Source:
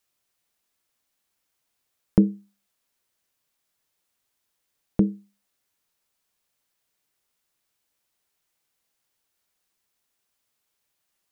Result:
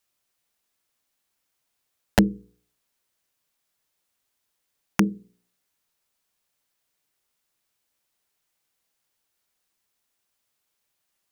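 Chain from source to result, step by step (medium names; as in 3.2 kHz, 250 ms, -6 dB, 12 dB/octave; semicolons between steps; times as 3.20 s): integer overflow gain 7 dB; de-hum 59.85 Hz, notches 8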